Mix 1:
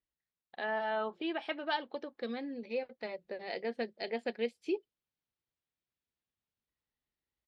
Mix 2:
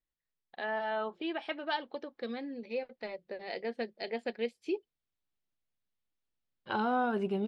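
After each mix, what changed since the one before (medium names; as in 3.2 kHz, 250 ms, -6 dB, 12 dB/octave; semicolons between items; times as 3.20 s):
second voice: entry -1.75 s; master: remove high-pass 43 Hz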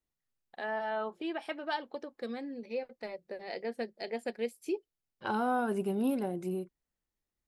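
second voice: entry -1.45 s; master: remove resonant low-pass 3.7 kHz, resonance Q 1.5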